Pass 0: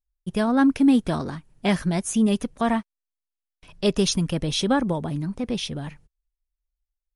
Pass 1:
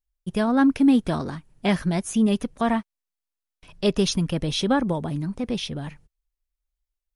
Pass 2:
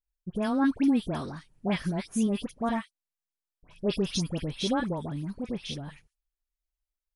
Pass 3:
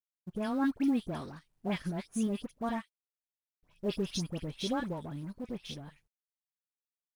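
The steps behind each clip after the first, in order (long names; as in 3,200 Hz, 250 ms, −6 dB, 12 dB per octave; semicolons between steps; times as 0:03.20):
dynamic equaliser 8,000 Hz, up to −5 dB, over −46 dBFS, Q 1.2
all-pass dispersion highs, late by 85 ms, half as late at 1,700 Hz; level −6.5 dB
mu-law and A-law mismatch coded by A; level −4.5 dB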